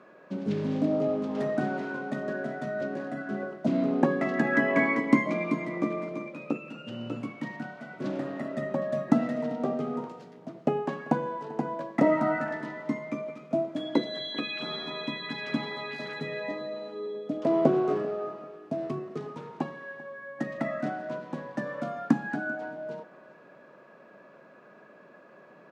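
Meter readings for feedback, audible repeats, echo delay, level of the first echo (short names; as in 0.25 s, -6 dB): 29%, 2, 0.391 s, -20.5 dB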